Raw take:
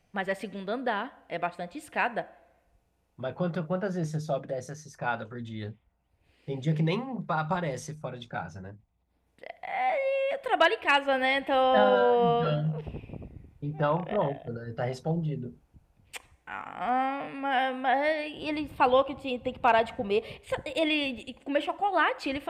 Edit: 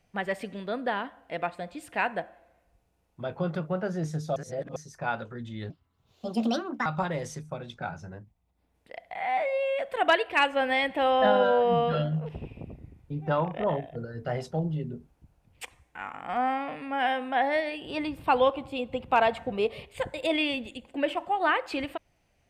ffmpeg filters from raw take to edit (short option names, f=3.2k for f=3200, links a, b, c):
-filter_complex "[0:a]asplit=5[a][b][c][d][e];[a]atrim=end=4.362[f];[b]atrim=start=4.358:end=4.762,asetpts=PTS-STARTPTS,areverse[g];[c]atrim=start=4.758:end=5.704[h];[d]atrim=start=5.7:end=7.38,asetpts=PTS-STARTPTS,asetrate=63945,aresample=44100,atrim=end_sample=51095,asetpts=PTS-STARTPTS[i];[e]atrim=start=7.376[j];[f][g]acrossfade=d=0.004:c1=hsin:c2=hsin[k];[k][h]acrossfade=d=0.004:c1=hsin:c2=hsin[l];[l][i]acrossfade=d=0.004:c1=hsin:c2=hsin[m];[m][j]acrossfade=d=0.004:c1=hsin:c2=hsin"